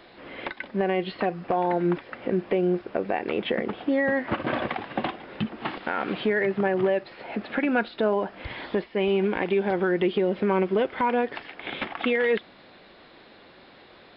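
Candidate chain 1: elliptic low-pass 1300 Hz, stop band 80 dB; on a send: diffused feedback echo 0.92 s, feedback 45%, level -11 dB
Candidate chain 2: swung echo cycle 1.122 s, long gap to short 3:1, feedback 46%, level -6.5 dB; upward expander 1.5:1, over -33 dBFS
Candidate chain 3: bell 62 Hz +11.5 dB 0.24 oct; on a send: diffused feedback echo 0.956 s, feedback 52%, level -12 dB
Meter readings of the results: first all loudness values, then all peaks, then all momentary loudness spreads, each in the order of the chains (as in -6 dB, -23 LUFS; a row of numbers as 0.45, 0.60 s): -27.0, -27.5, -26.5 LUFS; -11.5, -11.0, -12.0 dBFS; 13, 10, 12 LU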